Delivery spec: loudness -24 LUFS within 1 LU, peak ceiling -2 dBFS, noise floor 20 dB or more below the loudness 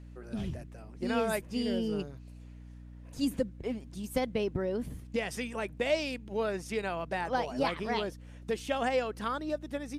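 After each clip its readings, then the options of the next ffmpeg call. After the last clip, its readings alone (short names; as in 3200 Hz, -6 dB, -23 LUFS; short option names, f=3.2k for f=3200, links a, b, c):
hum 60 Hz; harmonics up to 300 Hz; hum level -46 dBFS; loudness -33.5 LUFS; peak -17.0 dBFS; loudness target -24.0 LUFS
-> -af "bandreject=f=60:t=h:w=6,bandreject=f=120:t=h:w=6,bandreject=f=180:t=h:w=6,bandreject=f=240:t=h:w=6,bandreject=f=300:t=h:w=6"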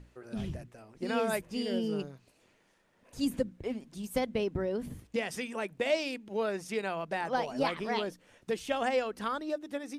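hum none; loudness -34.0 LUFS; peak -17.0 dBFS; loudness target -24.0 LUFS
-> -af "volume=10dB"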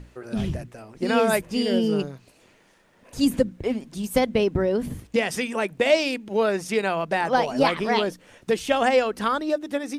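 loudness -24.0 LUFS; peak -7.0 dBFS; noise floor -58 dBFS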